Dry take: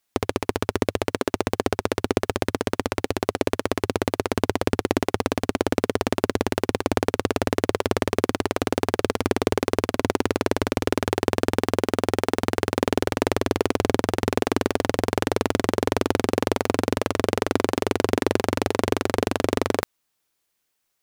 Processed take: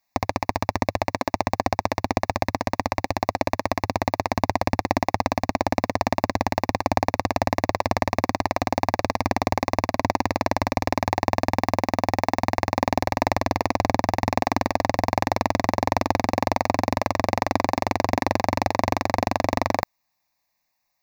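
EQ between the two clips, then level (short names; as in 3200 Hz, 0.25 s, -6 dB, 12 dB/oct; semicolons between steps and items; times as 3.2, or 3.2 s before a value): bell 710 Hz +6 dB 2.4 oct; fixed phaser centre 2100 Hz, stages 8; +1.5 dB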